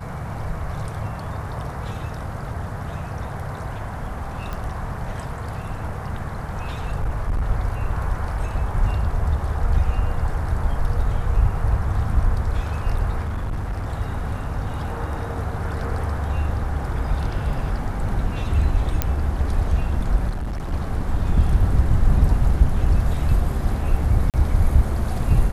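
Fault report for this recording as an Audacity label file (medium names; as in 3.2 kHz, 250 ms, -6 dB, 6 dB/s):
4.530000	4.530000	pop -17 dBFS
6.920000	7.480000	clipped -18 dBFS
13.240000	13.930000	clipped -22 dBFS
19.020000	19.020000	pop -5 dBFS
20.290000	20.730000	clipped -23.5 dBFS
24.300000	24.340000	dropout 38 ms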